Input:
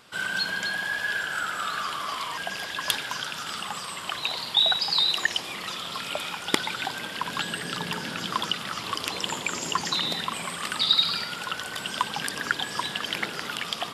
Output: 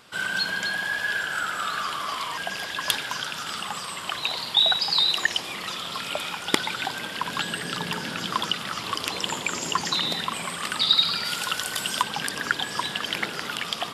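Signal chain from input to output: 11.24–12.01 s: treble shelf 3.2 kHz -> 6.1 kHz +10.5 dB; trim +1.5 dB

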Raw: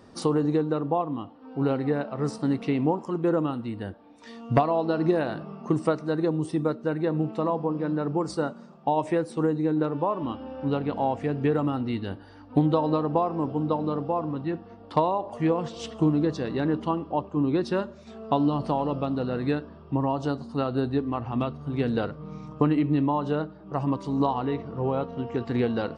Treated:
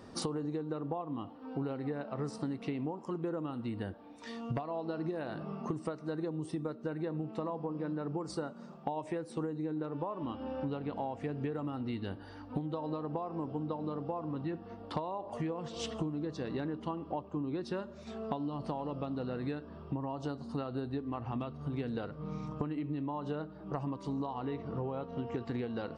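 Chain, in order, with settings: compression 12:1, threshold -33 dBFS, peak gain reduction 18.5 dB

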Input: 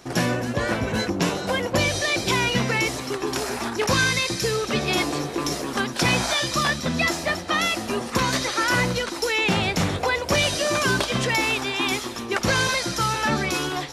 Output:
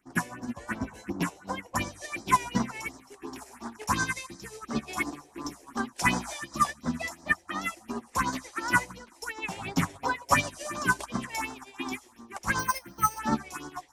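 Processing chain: graphic EQ 125/250/500/1000/2000/4000/8000 Hz -8/+6/-9/+8/+4/-10/+5 dB; 12.59–13.19 s: careless resampling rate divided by 6×, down filtered, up hold; phase shifter stages 4, 2.8 Hz, lowest notch 190–2600 Hz; 9.61–10.50 s: comb 7.3 ms, depth 71%; upward expansion 2.5:1, over -33 dBFS; trim +1.5 dB

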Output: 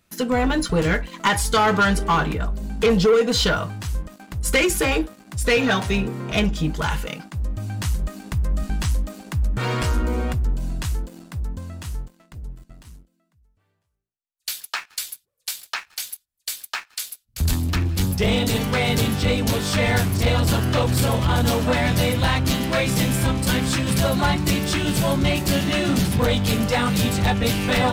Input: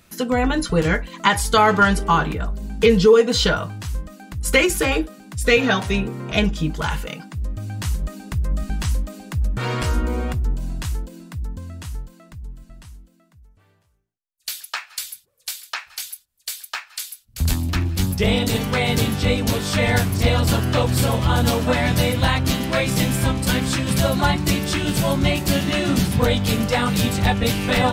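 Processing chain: waveshaping leveller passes 2; trim -7 dB

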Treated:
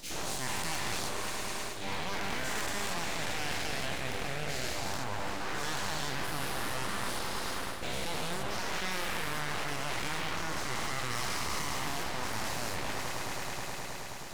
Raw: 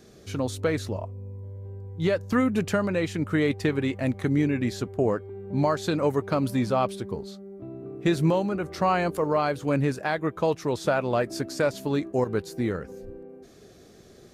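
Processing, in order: every event in the spectrogram widened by 480 ms; on a send: echo with a slow build-up 106 ms, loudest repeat 5, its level -16.5 dB; on the sum: full-wave rectifier; reverse; compression 6:1, threshold -25 dBFS, peak gain reduction 13 dB; reverse; treble shelf 2 kHz +11 dB; trim -7 dB

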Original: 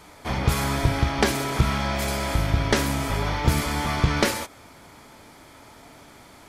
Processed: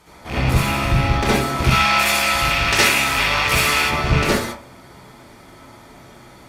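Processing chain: rattle on loud lows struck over -28 dBFS, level -14 dBFS; valve stage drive 15 dB, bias 0.65; 1.64–3.83 s: tilt shelf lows -9 dB, about 640 Hz; reverberation RT60 0.35 s, pre-delay 60 ms, DRR -7.5 dB; trim -1 dB

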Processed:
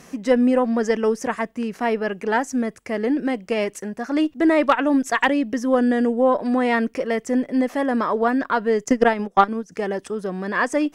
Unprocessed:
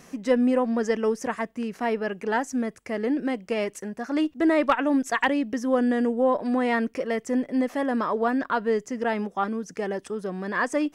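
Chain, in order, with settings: 8.84–9.72 s: transient shaper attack +11 dB, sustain -10 dB; Chebyshev shaper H 4 -25 dB, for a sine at -5 dBFS; trim +4 dB

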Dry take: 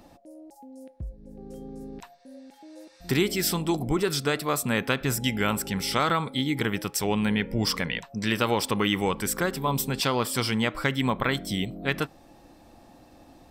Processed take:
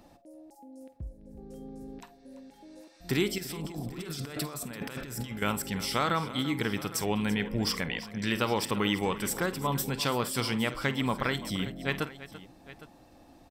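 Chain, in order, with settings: 3.38–5.42 s: compressor with a negative ratio -35 dBFS, ratio -1; multi-tap echo 49/338/810 ms -15/-15.5/-18 dB; trim -4 dB

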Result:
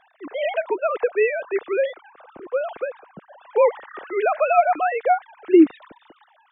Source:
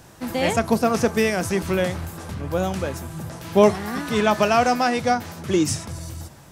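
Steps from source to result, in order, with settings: formants replaced by sine waves; 2.11–4.17 s: tape noise reduction on one side only decoder only

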